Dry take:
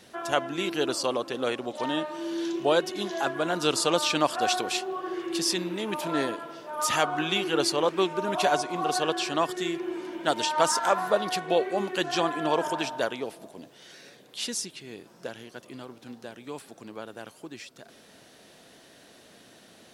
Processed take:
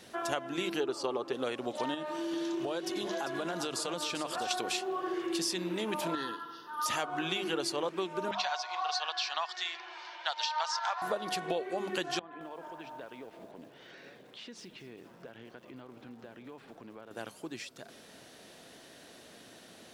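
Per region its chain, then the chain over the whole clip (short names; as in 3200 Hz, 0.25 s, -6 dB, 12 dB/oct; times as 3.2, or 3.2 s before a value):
0.8–1.33 high shelf 7000 Hz -10.5 dB + small resonant body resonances 400/850/1200 Hz, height 10 dB
1.94–4.51 compressor 5:1, threshold -31 dBFS + echo 0.394 s -9.5 dB
6.15–6.86 low shelf 260 Hz -12 dB + fixed phaser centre 2300 Hz, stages 6
8.31–11.02 Chebyshev band-pass 790–5700 Hz, order 3 + bell 4200 Hz +6.5 dB 0.57 oct
12.19–17.11 LPF 2600 Hz + compressor 4:1, threshold -45 dBFS + lo-fi delay 0.219 s, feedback 55%, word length 9-bit, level -13.5 dB
whole clip: notches 50/100/150/200 Hz; compressor, threshold -30 dBFS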